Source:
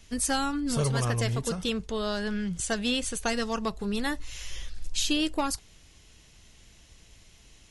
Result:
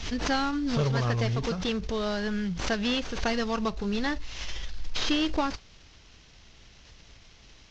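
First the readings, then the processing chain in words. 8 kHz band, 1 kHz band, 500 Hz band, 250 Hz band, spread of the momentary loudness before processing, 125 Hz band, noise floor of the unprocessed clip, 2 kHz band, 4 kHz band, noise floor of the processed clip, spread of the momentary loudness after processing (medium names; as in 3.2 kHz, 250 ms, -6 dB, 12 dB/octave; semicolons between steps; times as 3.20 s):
-10.0 dB, +1.0 dB, +1.0 dB, +1.0 dB, 9 LU, +1.0 dB, -56 dBFS, +1.0 dB, 0.0 dB, -54 dBFS, 10 LU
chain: CVSD coder 32 kbps; swell ahead of each attack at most 66 dB/s; trim +1 dB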